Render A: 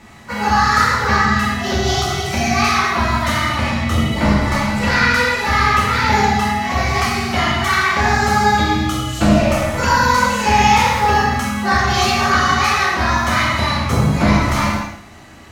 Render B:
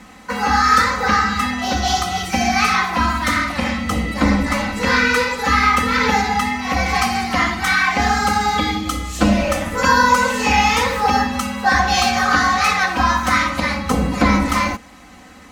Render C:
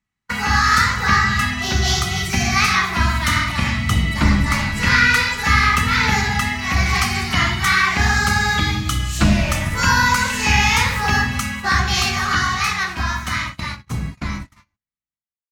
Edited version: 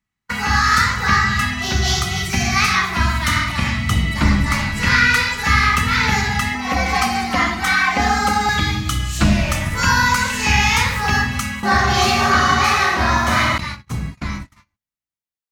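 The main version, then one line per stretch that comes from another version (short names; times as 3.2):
C
6.55–8.49 from B
11.63–13.58 from A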